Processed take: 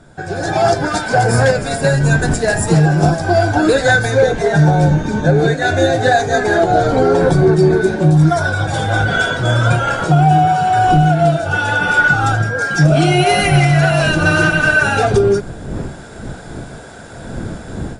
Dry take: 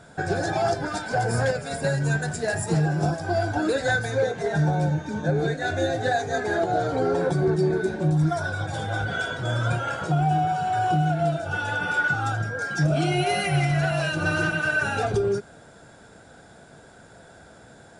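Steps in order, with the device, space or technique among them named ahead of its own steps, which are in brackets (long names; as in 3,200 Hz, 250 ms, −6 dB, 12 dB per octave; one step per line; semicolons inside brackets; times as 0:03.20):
smartphone video outdoors (wind on the microphone 230 Hz −40 dBFS; automatic gain control gain up to 14 dB; AAC 64 kbit/s 32,000 Hz)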